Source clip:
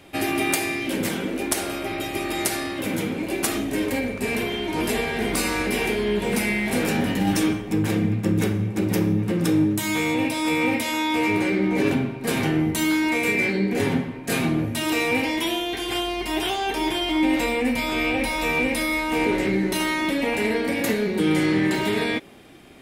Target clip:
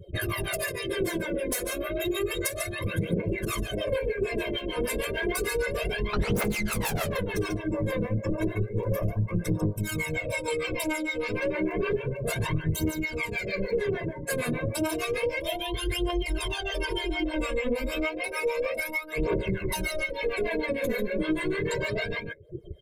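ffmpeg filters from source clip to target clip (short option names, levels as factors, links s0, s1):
-filter_complex "[0:a]asettb=1/sr,asplit=3[s0][s1][s2];[s0]atrim=end=17.954[s3];[s1]atrim=start=17.95:end=19.18,asetpts=PTS-STARTPTS,afade=t=in:d=0.004:c=qsin,afade=t=out:st=1.226:d=0.004:c=qsin,highpass=270[s4];[s2]atrim=start=19.176[s5];[s3][s4]acrossfade=d=0.004:c1=hsin:c2=qsin[s6];[s6][s5]acrossfade=d=0.004:c1=qsin:c2=hsin,volume=10,asoftclip=hard,volume=0.1,aecho=1:1:1.9:0.85,acompressor=mode=upward:threshold=0.0178:ratio=2.5,adynamicequalizer=threshold=0.00631:dfrequency=890:dqfactor=2.8:tfrequency=890:tqfactor=2.8:attack=5:release=100:ratio=0.375:range=3:mode=cutabove:tftype=bell,asettb=1/sr,asplit=3[s7][s8][s9];[s7]atrim=end=6.134[s10];[s8]atrim=start=6.13:end=7.06,asetpts=PTS-STARTPTS,afade=t=in:d=0.004:c=qsin,afade=t=out:st=0.926:d=0.004:c=qsin,aeval=exprs='0.2*sin(PI/2*2.51*val(0)/0.2)':c=same[s11];[s9]atrim=start=7.056[s12];[s10][s11]acrossfade=d=0.004:c1=hsin:c2=qsin[s13];[s13][s12]acrossfade=d=0.004:c1=qsin:c2=hsin,aecho=1:1:90.38|142.9:0.251|0.501,afftdn=nr=33:nf=-34,aphaser=in_gain=1:out_gain=1:delay=4.1:decay=0.74:speed=0.31:type=triangular,acrossover=split=550[s14][s15];[s14]aeval=exprs='val(0)*(1-1/2+1/2*cos(2*PI*6.6*n/s))':c=same[s16];[s15]aeval=exprs='val(0)*(1-1/2-1/2*cos(2*PI*6.6*n/s))':c=same[s17];[s16][s17]amix=inputs=2:normalize=0,acompressor=threshold=0.0562:ratio=8,equalizer=f=3800:t=o:w=2.8:g=-7,volume=1.33"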